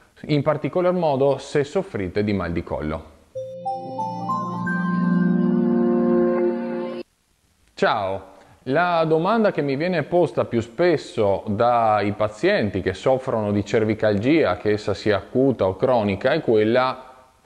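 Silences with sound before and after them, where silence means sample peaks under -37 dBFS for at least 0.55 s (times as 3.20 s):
7.02–7.68 s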